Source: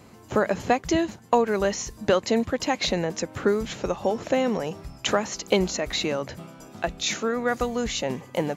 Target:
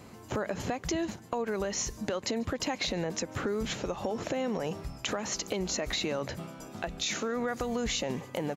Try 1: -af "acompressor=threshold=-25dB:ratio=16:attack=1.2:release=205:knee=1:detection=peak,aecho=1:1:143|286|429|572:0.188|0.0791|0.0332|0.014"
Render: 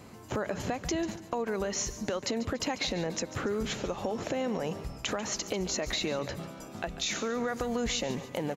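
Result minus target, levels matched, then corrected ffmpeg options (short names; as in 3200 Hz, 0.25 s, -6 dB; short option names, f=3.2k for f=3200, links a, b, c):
echo-to-direct +12 dB
-af "acompressor=threshold=-25dB:ratio=16:attack=1.2:release=205:knee=1:detection=peak,aecho=1:1:143|286:0.0473|0.0199"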